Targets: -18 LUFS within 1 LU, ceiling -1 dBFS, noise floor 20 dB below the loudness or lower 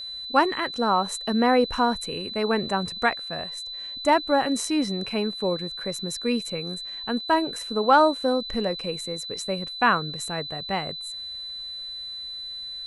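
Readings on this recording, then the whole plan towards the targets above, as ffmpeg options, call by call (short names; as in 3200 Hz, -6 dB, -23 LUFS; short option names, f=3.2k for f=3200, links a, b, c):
steady tone 4000 Hz; tone level -33 dBFS; loudness -25.5 LUFS; peak -5.5 dBFS; loudness target -18.0 LUFS
-> -af "bandreject=f=4k:w=30"
-af "volume=7.5dB,alimiter=limit=-1dB:level=0:latency=1"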